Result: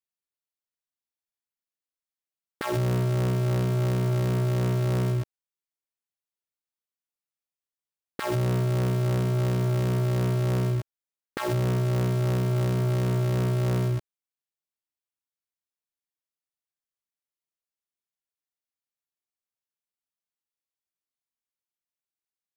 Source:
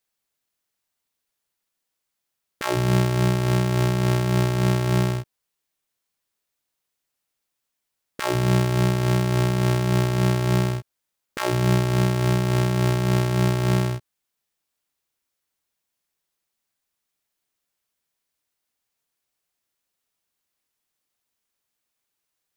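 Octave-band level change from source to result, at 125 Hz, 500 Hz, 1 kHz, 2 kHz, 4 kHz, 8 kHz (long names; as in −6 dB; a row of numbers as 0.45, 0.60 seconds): −3.0, −4.0, −7.5, −8.0, −9.0, −8.0 decibels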